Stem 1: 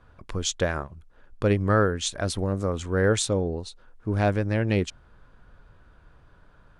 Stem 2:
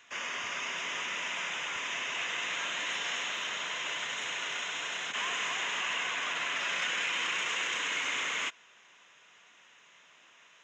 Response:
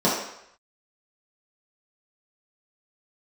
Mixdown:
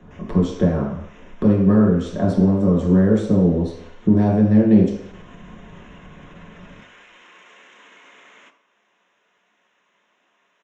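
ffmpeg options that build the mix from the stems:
-filter_complex "[0:a]acrossover=split=230|2700|5500[link_01][link_02][link_03][link_04];[link_01]acompressor=threshold=-33dB:ratio=4[link_05];[link_02]acompressor=threshold=-35dB:ratio=4[link_06];[link_03]acompressor=threshold=-47dB:ratio=4[link_07];[link_04]acompressor=threshold=-46dB:ratio=4[link_08];[link_05][link_06][link_07][link_08]amix=inputs=4:normalize=0,lowshelf=frequency=260:gain=11,volume=-3.5dB,asplit=3[link_09][link_10][link_11];[link_10]volume=-6dB[link_12];[1:a]acompressor=threshold=-46dB:ratio=2,volume=-4dB,asplit=2[link_13][link_14];[link_14]volume=-21dB[link_15];[link_11]apad=whole_len=473454[link_16];[link_13][link_16]sidechaincompress=threshold=-45dB:ratio=8:attack=16:release=174[link_17];[2:a]atrim=start_sample=2205[link_18];[link_12][link_15]amix=inputs=2:normalize=0[link_19];[link_19][link_18]afir=irnorm=-1:irlink=0[link_20];[link_09][link_17][link_20]amix=inputs=3:normalize=0,highshelf=frequency=2400:gain=-11"

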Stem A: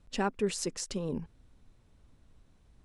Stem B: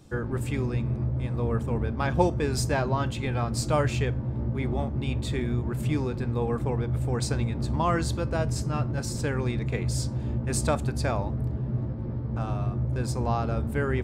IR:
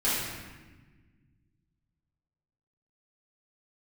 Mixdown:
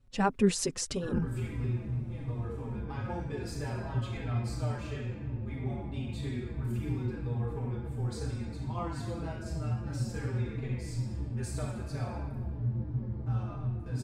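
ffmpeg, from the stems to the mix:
-filter_complex "[0:a]equalizer=frequency=80:width=0.39:gain=7,dynaudnorm=framelen=120:gausssize=3:maxgain=11dB,volume=-5dB[link_01];[1:a]acompressor=threshold=-27dB:ratio=6,adynamicequalizer=threshold=0.00251:dfrequency=4600:dqfactor=0.7:tfrequency=4600:tqfactor=0.7:attack=5:release=100:ratio=0.375:range=2:mode=cutabove:tftype=highshelf,adelay=900,volume=-12.5dB,asplit=2[link_02][link_03];[link_03]volume=-4dB[link_04];[2:a]atrim=start_sample=2205[link_05];[link_04][link_05]afir=irnorm=-1:irlink=0[link_06];[link_01][link_02][link_06]amix=inputs=3:normalize=0,asplit=2[link_07][link_08];[link_08]adelay=4.8,afreqshift=-3[link_09];[link_07][link_09]amix=inputs=2:normalize=1"

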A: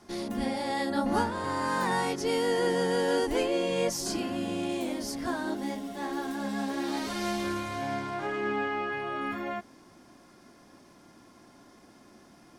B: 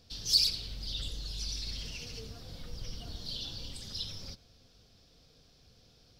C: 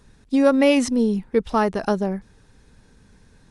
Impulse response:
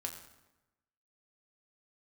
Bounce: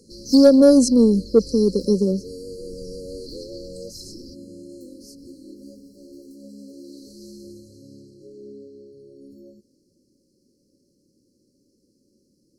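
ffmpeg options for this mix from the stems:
-filter_complex "[0:a]volume=-14.5dB[link_01];[1:a]volume=-7.5dB[link_02];[2:a]highpass=frequency=180:width=0.5412,highpass=frequency=180:width=1.3066,volume=0dB[link_03];[link_01][link_02][link_03]amix=inputs=3:normalize=0,afftfilt=real='re*(1-between(b*sr/4096,580,4000))':imag='im*(1-between(b*sr/4096,580,4000))':win_size=4096:overlap=0.75,acontrast=55"

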